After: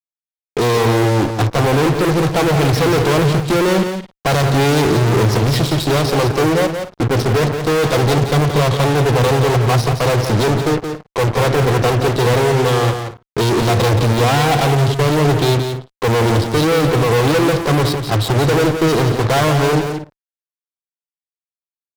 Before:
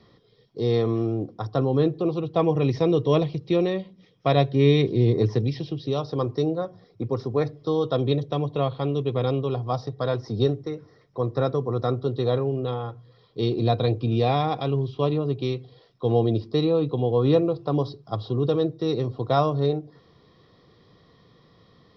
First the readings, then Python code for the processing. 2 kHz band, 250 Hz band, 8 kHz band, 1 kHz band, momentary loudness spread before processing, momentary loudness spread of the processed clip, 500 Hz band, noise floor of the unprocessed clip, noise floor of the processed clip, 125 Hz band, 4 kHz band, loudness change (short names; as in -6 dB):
+20.5 dB, +8.0 dB, n/a, +12.0 dB, 9 LU, 5 LU, +8.0 dB, -58 dBFS, under -85 dBFS, +10.0 dB, +14.0 dB, +9.0 dB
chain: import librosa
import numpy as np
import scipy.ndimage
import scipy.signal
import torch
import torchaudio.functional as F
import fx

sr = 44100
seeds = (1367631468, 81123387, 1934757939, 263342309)

y = fx.fuzz(x, sr, gain_db=42.0, gate_db=-42.0)
y = fx.echo_multitap(y, sr, ms=(174, 229), db=(-7.5, -19.5))